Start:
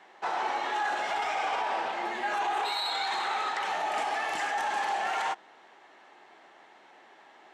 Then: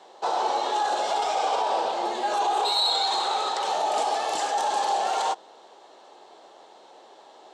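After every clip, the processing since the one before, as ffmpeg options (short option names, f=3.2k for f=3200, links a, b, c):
-af "equalizer=f=500:t=o:w=1:g=11,equalizer=f=1k:t=o:w=1:g=4,equalizer=f=2k:t=o:w=1:g=-11,equalizer=f=4k:t=o:w=1:g=10,equalizer=f=8k:t=o:w=1:g=9"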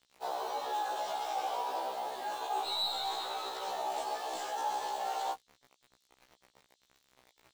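-filter_complex "[0:a]acrossover=split=100|3500[a][b][c];[b]acrusher=bits=6:mix=0:aa=0.000001[d];[c]aeval=exprs='(tanh(20*val(0)+0.3)-tanh(0.3))/20':c=same[e];[a][d][e]amix=inputs=3:normalize=0,afftfilt=real='re*1.73*eq(mod(b,3),0)':imag='im*1.73*eq(mod(b,3),0)':win_size=2048:overlap=0.75,volume=-8.5dB"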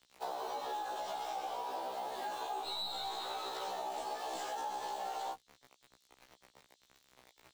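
-filter_complex "[0:a]acrossover=split=290[a][b];[b]acompressor=threshold=-40dB:ratio=6[c];[a][c]amix=inputs=2:normalize=0,volume=2.5dB"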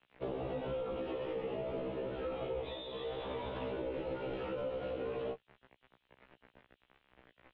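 -af "highpass=f=250:t=q:w=0.5412,highpass=f=250:t=q:w=1.307,lowpass=f=3.2k:t=q:w=0.5176,lowpass=f=3.2k:t=q:w=0.7071,lowpass=f=3.2k:t=q:w=1.932,afreqshift=-320,volume=1.5dB"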